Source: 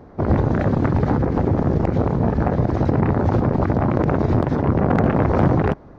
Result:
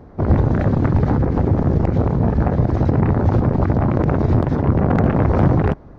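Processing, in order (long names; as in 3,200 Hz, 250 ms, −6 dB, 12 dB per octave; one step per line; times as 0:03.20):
low-shelf EQ 140 Hz +7 dB
level −1 dB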